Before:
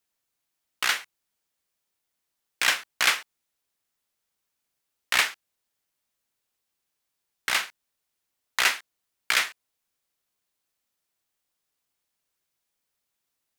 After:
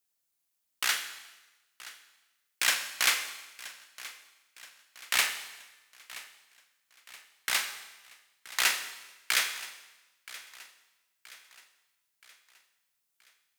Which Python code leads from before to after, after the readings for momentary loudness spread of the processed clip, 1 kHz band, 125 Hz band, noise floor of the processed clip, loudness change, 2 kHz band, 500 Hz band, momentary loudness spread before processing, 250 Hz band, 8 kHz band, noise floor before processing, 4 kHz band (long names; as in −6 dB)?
20 LU, −5.5 dB, can't be measured, −80 dBFS, −4.0 dB, −4.5 dB, −5.5 dB, 10 LU, −6.0 dB, +0.5 dB, −82 dBFS, −2.5 dB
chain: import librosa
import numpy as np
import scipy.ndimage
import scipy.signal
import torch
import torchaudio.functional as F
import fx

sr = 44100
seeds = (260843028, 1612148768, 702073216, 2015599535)

y = fx.high_shelf(x, sr, hz=4900.0, db=9.0)
y = fx.echo_feedback(y, sr, ms=975, feedback_pct=48, wet_db=-18)
y = fx.rev_schroeder(y, sr, rt60_s=1.1, comb_ms=30, drr_db=8.0)
y = y * 10.0 ** (-6.5 / 20.0)